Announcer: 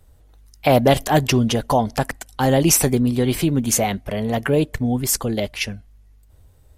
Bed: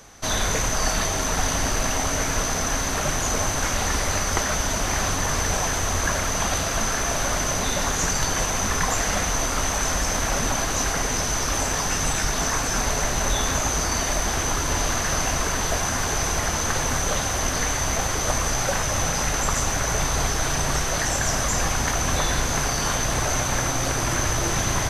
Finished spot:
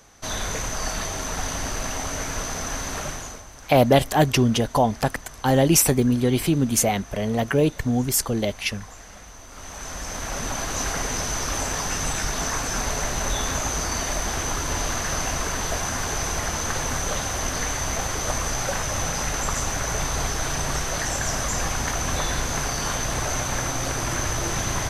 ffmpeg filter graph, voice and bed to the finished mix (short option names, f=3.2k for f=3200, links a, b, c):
-filter_complex "[0:a]adelay=3050,volume=-1.5dB[a];[1:a]volume=13dB,afade=t=out:st=2.98:d=0.45:silence=0.16788,afade=t=in:st=9.47:d=1.41:silence=0.125893[b];[a][b]amix=inputs=2:normalize=0"